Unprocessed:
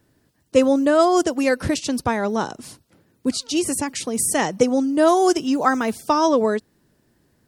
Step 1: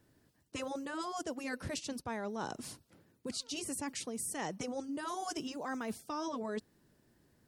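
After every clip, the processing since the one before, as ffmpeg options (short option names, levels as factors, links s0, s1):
-af "afftfilt=real='re*lt(hypot(re,im),1.12)':imag='im*lt(hypot(re,im),1.12)':win_size=1024:overlap=0.75,areverse,acompressor=threshold=0.0316:ratio=6,areverse,volume=0.473"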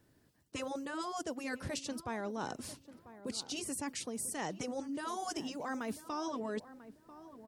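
-filter_complex "[0:a]asplit=2[s0][s1];[s1]adelay=993,lowpass=f=1200:p=1,volume=0.2,asplit=2[s2][s3];[s3]adelay=993,lowpass=f=1200:p=1,volume=0.31,asplit=2[s4][s5];[s5]adelay=993,lowpass=f=1200:p=1,volume=0.31[s6];[s0][s2][s4][s6]amix=inputs=4:normalize=0"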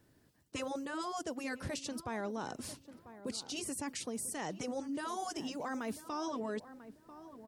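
-af "alimiter=level_in=2.11:limit=0.0631:level=0:latency=1:release=65,volume=0.473,volume=1.12"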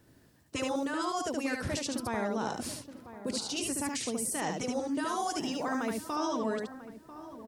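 -af "aecho=1:1:73:0.668,volume=1.78"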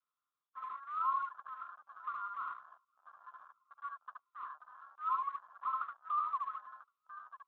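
-af "asuperpass=centerf=1200:order=20:qfactor=2.9,afwtdn=0.00251,volume=1.58" -ar 16000 -c:a libspeex -b:a 17k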